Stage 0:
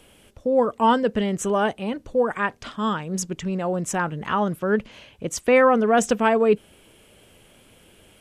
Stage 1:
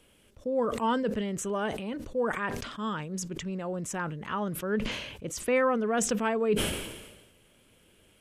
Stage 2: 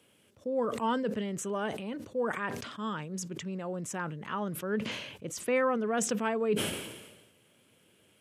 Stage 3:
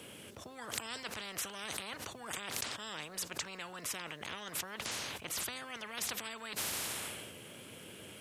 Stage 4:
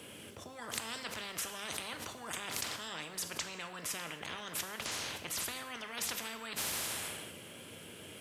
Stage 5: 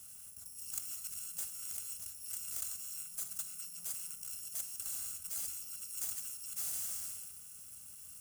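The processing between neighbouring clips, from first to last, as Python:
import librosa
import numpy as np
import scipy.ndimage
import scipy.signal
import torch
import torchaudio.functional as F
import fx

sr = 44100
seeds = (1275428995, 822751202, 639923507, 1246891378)

y1 = fx.peak_eq(x, sr, hz=760.0, db=-4.5, octaves=0.48)
y1 = fx.sustainer(y1, sr, db_per_s=48.0)
y1 = y1 * librosa.db_to_amplitude(-8.5)
y2 = scipy.signal.sosfilt(scipy.signal.butter(4, 98.0, 'highpass', fs=sr, output='sos'), y1)
y2 = y2 * librosa.db_to_amplitude(-2.5)
y3 = fx.spectral_comp(y2, sr, ratio=10.0)
y3 = y3 * librosa.db_to_amplitude(3.0)
y4 = fx.rev_gated(y3, sr, seeds[0], gate_ms=300, shape='falling', drr_db=7.0)
y5 = fx.bit_reversed(y4, sr, seeds[1], block=128)
y5 = fx.graphic_eq(y5, sr, hz=(125, 250, 500, 1000, 2000, 4000, 8000), db=(-11, -6, -11, -8, -10, -10, 7))
y5 = y5 * librosa.db_to_amplitude(-2.0)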